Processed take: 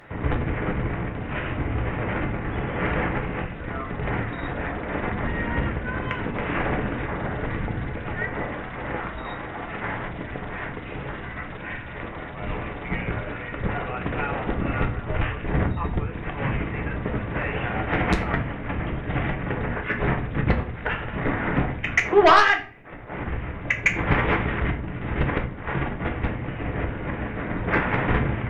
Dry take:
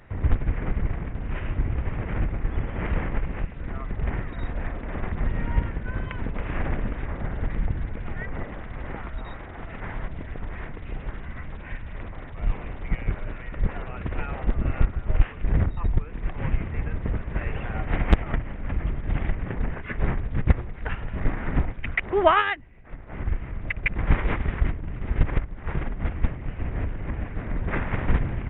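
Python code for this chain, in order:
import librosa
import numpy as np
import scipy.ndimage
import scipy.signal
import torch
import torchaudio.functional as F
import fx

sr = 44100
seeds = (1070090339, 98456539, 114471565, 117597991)

p1 = fx.highpass(x, sr, hz=270.0, slope=6)
p2 = fx.fold_sine(p1, sr, drive_db=11, ceiling_db=-4.0)
p3 = p1 + (p2 * librosa.db_to_amplitude(-9.0))
p4 = fx.room_shoebox(p3, sr, seeds[0], volume_m3=34.0, walls='mixed', distance_m=0.38)
y = p4 * librosa.db_to_amplitude(-2.5)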